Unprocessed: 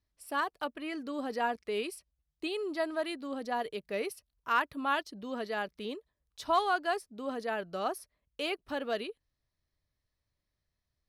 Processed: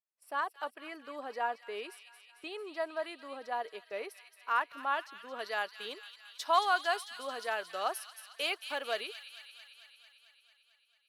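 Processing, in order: high-pass 660 Hz 12 dB/octave; gate -52 dBFS, range -13 dB; treble shelf 2.2 kHz -11 dB, from 5.39 s +2.5 dB; feedback echo behind a high-pass 223 ms, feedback 70%, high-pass 2.5 kHz, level -8 dB; trim +1.5 dB

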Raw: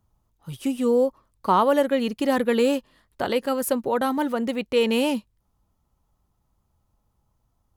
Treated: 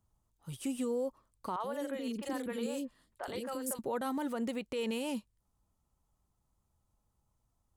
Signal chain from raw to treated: peaking EQ 8.3 kHz +8 dB 0.72 oct; peak limiter -19 dBFS, peak gain reduction 11.5 dB; 1.56–3.79 s: three bands offset in time mids, highs, lows 40/80 ms, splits 460/2600 Hz; trim -8 dB

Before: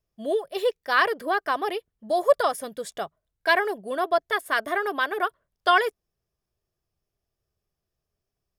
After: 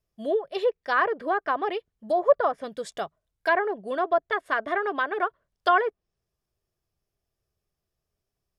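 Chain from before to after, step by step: low-pass that closes with the level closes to 1.5 kHz, closed at -20 dBFS

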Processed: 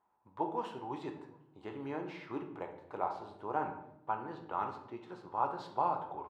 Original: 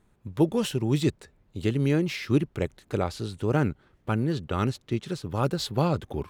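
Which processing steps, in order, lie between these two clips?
band-pass filter 910 Hz, Q 5.6; echo from a far wall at 130 m, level -29 dB; on a send at -3 dB: reverberation RT60 0.75 s, pre-delay 3 ms; on the sum: trim +4 dB

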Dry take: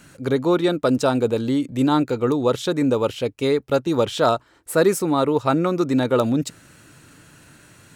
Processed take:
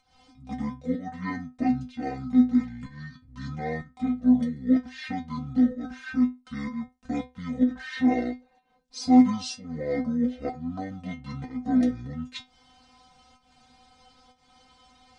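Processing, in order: volume shaper 120 bpm, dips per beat 1, -19 dB, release 144 ms; wide varispeed 0.524×; inharmonic resonator 250 Hz, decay 0.24 s, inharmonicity 0.002; trim +5.5 dB

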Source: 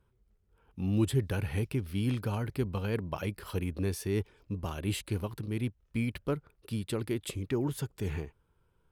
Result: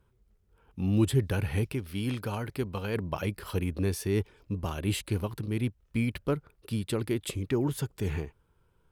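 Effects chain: 1.73–2.96 s: bass shelf 270 Hz -6.5 dB; trim +3 dB

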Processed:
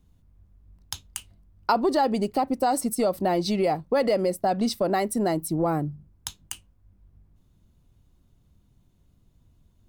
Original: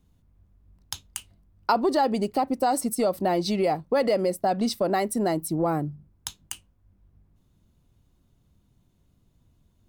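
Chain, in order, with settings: bass shelf 81 Hz +5.5 dB

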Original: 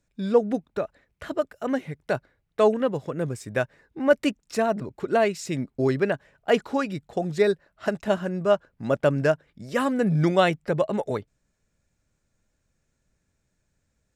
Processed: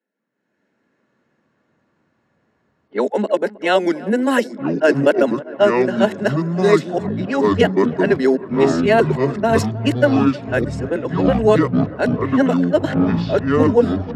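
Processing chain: reverse the whole clip; steep high-pass 200 Hz 72 dB/octave; level-controlled noise filter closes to 2.2 kHz, open at -20 dBFS; peaking EQ 660 Hz -3 dB 0.77 oct; level rider gain up to 16.5 dB; comb of notches 1.2 kHz; ever faster or slower copies 183 ms, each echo -7 st, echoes 3; on a send: feedback echo behind a low-pass 315 ms, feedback 79%, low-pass 1.8 kHz, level -19.5 dB; on the sum: trim -1.5 dB

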